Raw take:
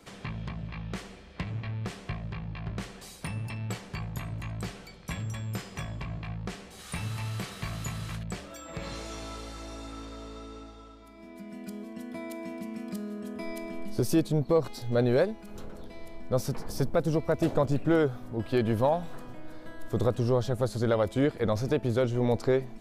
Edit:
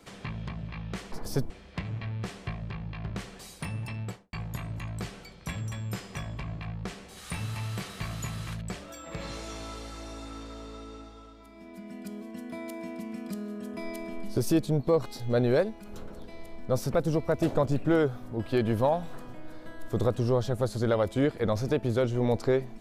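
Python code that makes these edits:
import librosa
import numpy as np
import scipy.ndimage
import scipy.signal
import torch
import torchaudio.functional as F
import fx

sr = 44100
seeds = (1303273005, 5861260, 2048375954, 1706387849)

y = fx.studio_fade_out(x, sr, start_s=3.59, length_s=0.36)
y = fx.edit(y, sr, fx.move(start_s=16.56, length_s=0.38, to_s=1.12), tone=tone)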